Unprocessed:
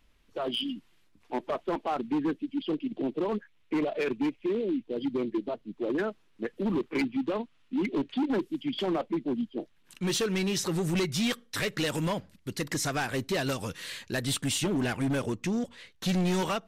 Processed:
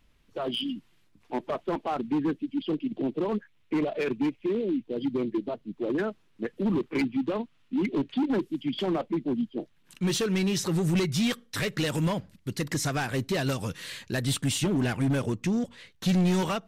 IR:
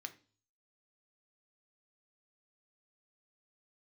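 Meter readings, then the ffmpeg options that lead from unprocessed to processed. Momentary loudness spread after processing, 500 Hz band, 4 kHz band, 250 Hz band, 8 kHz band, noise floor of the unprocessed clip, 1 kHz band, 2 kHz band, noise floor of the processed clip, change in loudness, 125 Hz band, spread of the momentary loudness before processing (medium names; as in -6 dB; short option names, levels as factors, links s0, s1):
8 LU, +1.0 dB, 0.0 dB, +2.5 dB, 0.0 dB, -64 dBFS, 0.0 dB, 0.0 dB, -64 dBFS, +2.0 dB, +4.5 dB, 8 LU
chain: -af "equalizer=f=130:w=0.84:g=5.5"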